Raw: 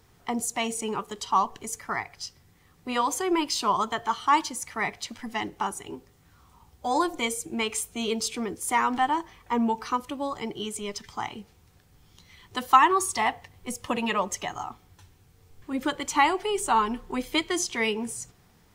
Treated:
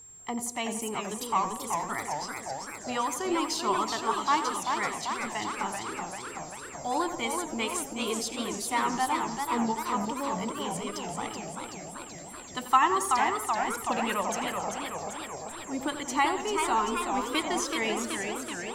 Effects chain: tape echo 87 ms, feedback 56%, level -9.5 dB, low-pass 2.4 kHz; whistle 7.5 kHz -43 dBFS; modulated delay 385 ms, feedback 69%, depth 204 cents, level -5 dB; trim -4.5 dB

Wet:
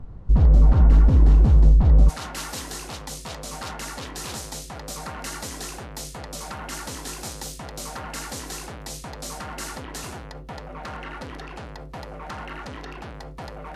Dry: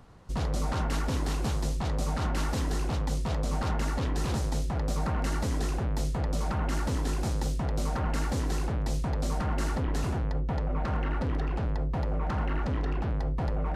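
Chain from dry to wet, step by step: tilt EQ -4 dB/octave, from 2.08 s +3 dB/octave

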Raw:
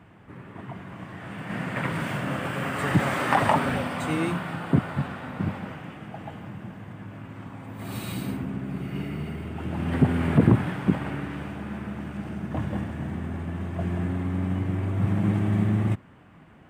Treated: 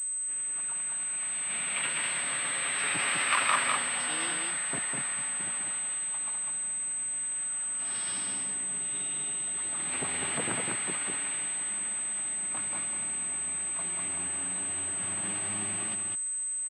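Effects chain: high-pass 430 Hz 6 dB/octave; tilt shelf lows -9 dB, about 890 Hz; formant shift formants +5 st; on a send: delay 201 ms -3.5 dB; on the sum: class-D stage that switches slowly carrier 8.2 kHz; trim -5.5 dB

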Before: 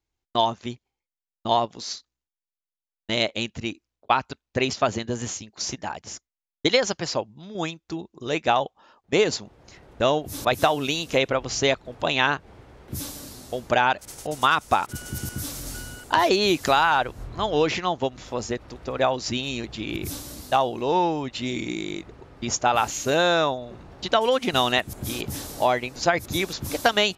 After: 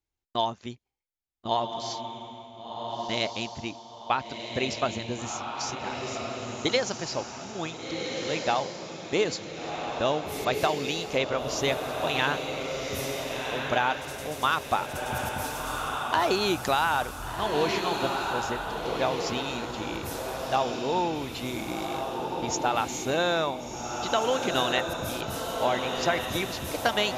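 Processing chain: echo that smears into a reverb 1471 ms, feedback 41%, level -3.5 dB; trim -5.5 dB

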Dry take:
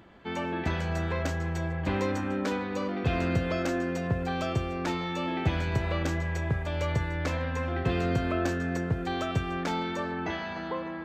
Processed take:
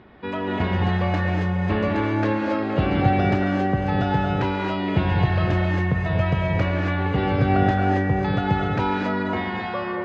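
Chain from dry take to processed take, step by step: tape speed +10%; distance through air 250 m; gated-style reverb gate 290 ms rising, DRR -0.5 dB; trim +5.5 dB

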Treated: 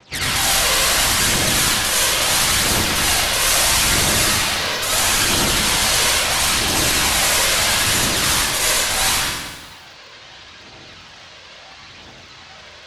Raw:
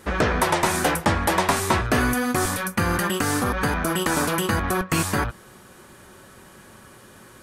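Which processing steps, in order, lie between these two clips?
low-pass 1.1 kHz 6 dB/octave; noise-vocoded speech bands 1; integer overflow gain 20 dB; phaser 1.3 Hz, delay 1.2 ms, feedback 66%; reverberation RT60 0.65 s, pre-delay 33 ms, DRR -6 dB; speed mistake 78 rpm record played at 45 rpm; bit-crushed delay 195 ms, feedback 35%, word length 6-bit, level -13 dB

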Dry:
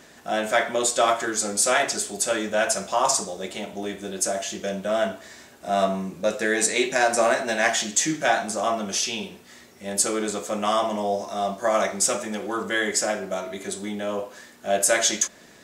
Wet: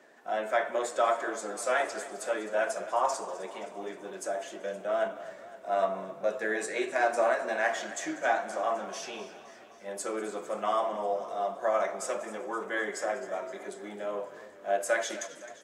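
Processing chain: coarse spectral quantiser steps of 15 dB; high-pass 180 Hz 12 dB/octave; three-band isolator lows -13 dB, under 320 Hz, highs -13 dB, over 2.1 kHz; on a send: frequency-shifting echo 192 ms, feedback 41%, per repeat -45 Hz, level -19 dB; on the sum: modulated delay 260 ms, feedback 64%, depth 64 cents, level -16 dB; trim -4.5 dB

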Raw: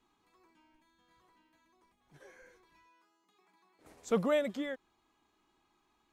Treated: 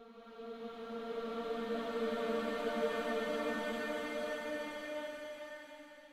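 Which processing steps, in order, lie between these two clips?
power-law waveshaper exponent 3; Paulstretch 6.1×, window 1.00 s, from 3.74 s; trim +3.5 dB

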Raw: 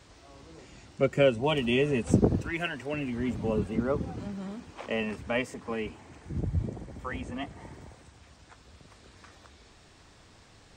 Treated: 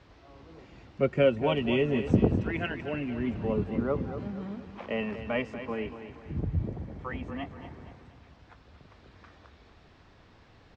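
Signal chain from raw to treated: distance through air 210 m; feedback delay 236 ms, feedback 43%, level -11 dB

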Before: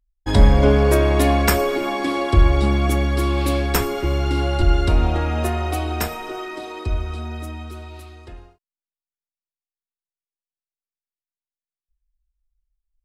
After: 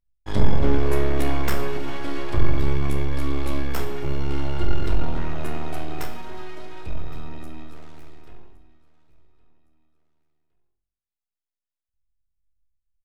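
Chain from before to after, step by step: 7.75–8.22 s: self-modulated delay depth 0.41 ms; tone controls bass 0 dB, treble -3 dB; half-wave rectifier; feedback delay 1114 ms, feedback 33%, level -22 dB; on a send at -4 dB: reverberation RT60 0.60 s, pre-delay 14 ms; on the sum: trim -6.5 dB

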